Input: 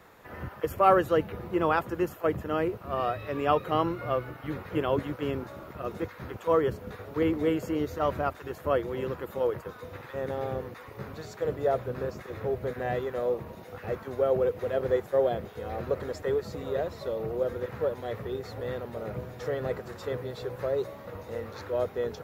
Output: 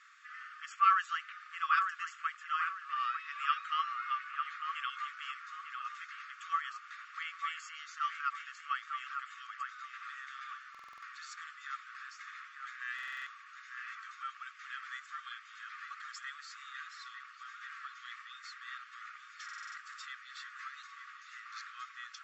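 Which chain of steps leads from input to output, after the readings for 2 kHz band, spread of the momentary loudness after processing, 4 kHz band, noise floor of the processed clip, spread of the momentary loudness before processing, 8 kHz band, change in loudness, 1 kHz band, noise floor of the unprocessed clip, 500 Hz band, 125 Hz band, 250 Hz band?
+1.0 dB, 14 LU, 0.0 dB, -55 dBFS, 12 LU, no reading, -8.5 dB, -3.5 dB, -47 dBFS, under -40 dB, under -40 dB, under -40 dB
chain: brick-wall FIR band-pass 1.1–7.9 kHz; band-stop 3.9 kHz, Q 12; on a send: feedback echo behind a low-pass 899 ms, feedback 34%, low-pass 2.2 kHz, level -5 dB; on the sum: buffer glitch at 10.70/12.94/19.44 s, samples 2048, times 6

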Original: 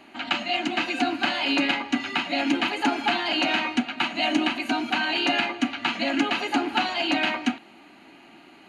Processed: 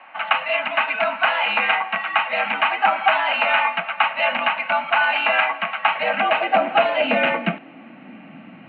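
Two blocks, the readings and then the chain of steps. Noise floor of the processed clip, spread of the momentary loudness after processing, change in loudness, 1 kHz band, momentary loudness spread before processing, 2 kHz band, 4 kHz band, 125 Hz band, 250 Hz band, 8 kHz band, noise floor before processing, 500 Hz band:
-43 dBFS, 4 LU, +5.0 dB, +8.0 dB, 4 LU, +7.0 dB, -0.5 dB, no reading, -8.0 dB, under -35 dB, -51 dBFS, +8.5 dB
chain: rattle on loud lows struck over -26 dBFS, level -16 dBFS; high-pass sweep 1 kHz -> 220 Hz, 5.73–8.66 s; mistuned SSB -67 Hz 160–2900 Hz; trim +5 dB

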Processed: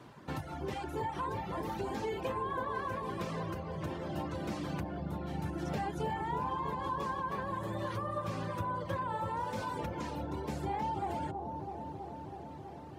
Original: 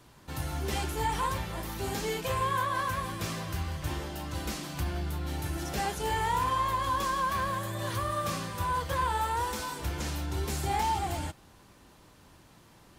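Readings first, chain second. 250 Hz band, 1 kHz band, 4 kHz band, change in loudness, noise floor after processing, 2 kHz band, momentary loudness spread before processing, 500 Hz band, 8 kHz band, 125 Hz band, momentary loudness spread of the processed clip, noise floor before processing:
0.0 dB, -5.5 dB, -12.0 dB, -5.5 dB, -47 dBFS, -8.0 dB, 7 LU, -1.5 dB, -17.0 dB, -5.0 dB, 6 LU, -57 dBFS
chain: compression 10:1, threshold -37 dBFS, peak gain reduction 12.5 dB; high-pass 130 Hz 12 dB/octave; reverb removal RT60 1.2 s; low-pass 1.4 kHz 6 dB/octave; bucket-brigade echo 325 ms, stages 2048, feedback 81%, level -5.5 dB; trim +7 dB

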